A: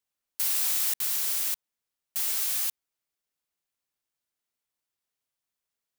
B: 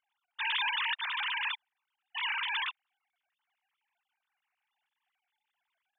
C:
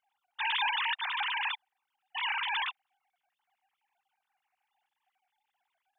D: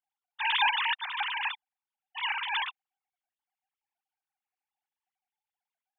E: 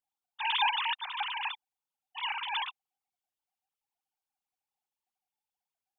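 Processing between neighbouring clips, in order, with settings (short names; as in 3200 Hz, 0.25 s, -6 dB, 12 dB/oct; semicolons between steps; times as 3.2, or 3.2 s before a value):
sine-wave speech; gain -5.5 dB
bell 770 Hz +11.5 dB 0.37 oct
upward expander 2.5:1, over -42 dBFS; gain +6 dB
bell 1800 Hz -8 dB 0.78 oct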